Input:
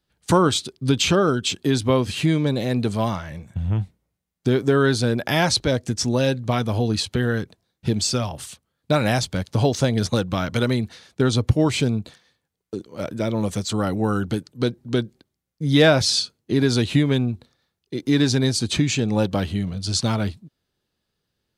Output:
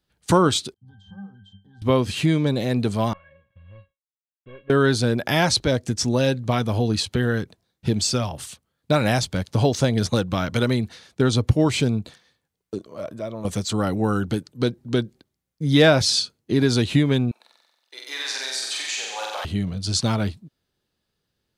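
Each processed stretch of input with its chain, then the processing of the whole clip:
0.74–1.82 s: compression 2:1, threshold -23 dBFS + static phaser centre 960 Hz, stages 4 + pitch-class resonator G, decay 0.27 s
3.13–4.70 s: CVSD coder 16 kbps + expander -47 dBFS + feedback comb 550 Hz, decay 0.17 s, mix 100%
12.78–13.45 s: compression 2:1, threshold -40 dBFS + small resonant body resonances 630/1100 Hz, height 11 dB, ringing for 25 ms
17.31–19.45 s: high-pass 740 Hz 24 dB/octave + compression 2.5:1, threshold -28 dBFS + flutter echo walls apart 7.9 m, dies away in 1.2 s
whole clip: none

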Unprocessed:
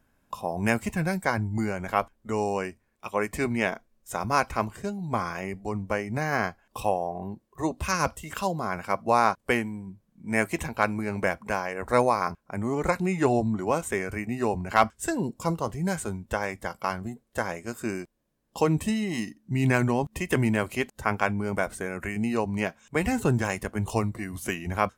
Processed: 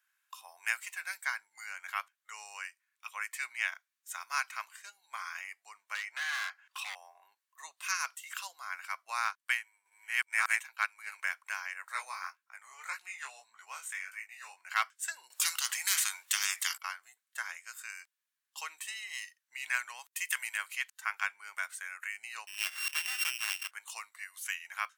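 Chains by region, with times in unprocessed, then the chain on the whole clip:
5.95–6.95 s: high-pass 330 Hz + overdrive pedal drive 16 dB, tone 2.3 kHz, clips at -11 dBFS + overload inside the chain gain 26 dB
9.25–11.20 s: chunks repeated in reverse 605 ms, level 0 dB + high-pass 260 Hz + transient shaper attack +1 dB, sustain -7 dB
11.88–14.57 s: peaking EQ 330 Hz -11.5 dB 0.25 oct + chorus 1.7 Hz, delay 16.5 ms, depth 6.5 ms
15.30–16.78 s: de-esser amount 65% + bass shelf 440 Hz +8.5 dB + spectrum-flattening compressor 10:1
19.99–20.58 s: high-pass 530 Hz + gate -47 dBFS, range -14 dB + treble shelf 5.6 kHz +9 dB
22.47–23.71 s: sorted samples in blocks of 16 samples + swell ahead of each attack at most 70 dB/s
whole clip: high-pass 1.4 kHz 24 dB/octave; band-stop 5.1 kHz, Q 25; trim -2.5 dB

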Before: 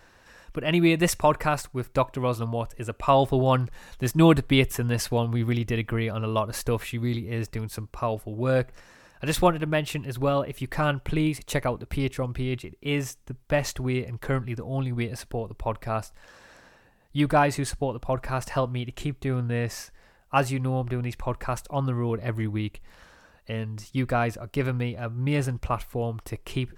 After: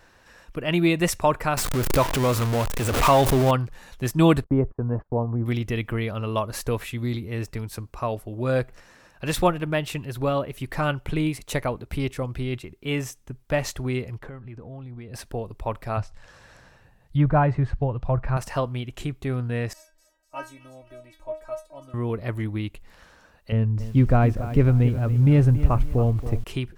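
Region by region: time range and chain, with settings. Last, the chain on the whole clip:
1.57–3.51 s: jump at every zero crossing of -22 dBFS + swell ahead of each attack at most 57 dB/s
4.44–5.46 s: low-pass 1.1 kHz 24 dB/octave + gate -37 dBFS, range -31 dB
14.18–15.14 s: low-pass 1.8 kHz 6 dB/octave + compression 5:1, threshold -36 dBFS
15.97–18.37 s: resonant low shelf 180 Hz +7 dB, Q 1.5 + low-pass that closes with the level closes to 1.5 kHz, closed at -19 dBFS
19.73–21.94 s: peaking EQ 580 Hz +10.5 dB 0.65 oct + inharmonic resonator 310 Hz, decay 0.24 s, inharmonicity 0.002 + feedback echo behind a high-pass 248 ms, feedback 50%, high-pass 2.8 kHz, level -11 dB
23.52–26.44 s: tilt EQ -3.5 dB/octave + bit-crushed delay 277 ms, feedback 35%, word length 7-bit, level -13 dB
whole clip: none

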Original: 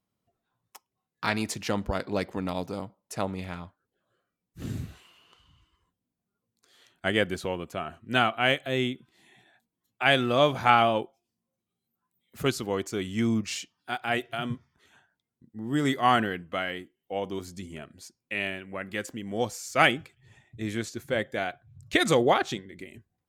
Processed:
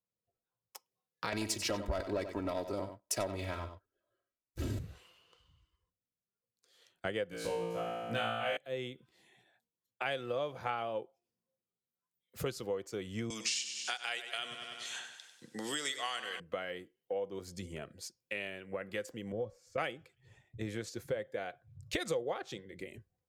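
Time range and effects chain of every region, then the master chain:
1.32–4.79 s: comb 3.1 ms, depth 89% + waveshaping leveller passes 2 + delay 93 ms -11 dB
7.29–8.57 s: treble shelf 8.1 kHz +3 dB + band-stop 380 Hz, Q 5.8 + flutter echo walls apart 3 m, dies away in 1.2 s
13.30–16.40 s: frequency weighting ITU-R 468 + feedback delay 97 ms, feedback 54%, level -12 dB + three bands compressed up and down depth 70%
19.32–19.78 s: tilt EQ -3.5 dB/octave + feedback comb 560 Hz, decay 0.21 s, mix 70%
whole clip: graphic EQ with 31 bands 250 Hz -6 dB, 500 Hz +11 dB, 5 kHz +3 dB; compression 5:1, threshold -36 dBFS; three bands expanded up and down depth 40%

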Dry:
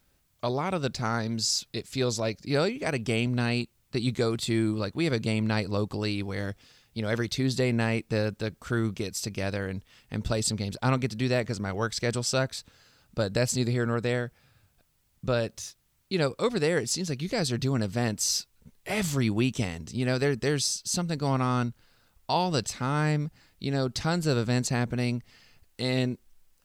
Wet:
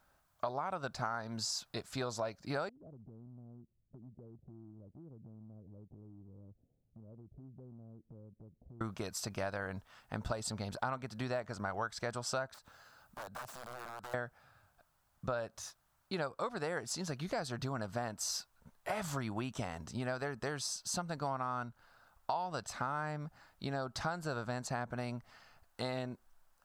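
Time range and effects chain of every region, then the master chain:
2.69–8.81 s: Gaussian low-pass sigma 23 samples + compression 4:1, threshold -46 dBFS
12.54–14.14 s: treble shelf 11 kHz +8.5 dB + compression 3:1, threshold -45 dBFS + integer overflow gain 39 dB
whole clip: high-order bell 980 Hz +12.5 dB; compression 6:1, threshold -27 dBFS; trim -7 dB

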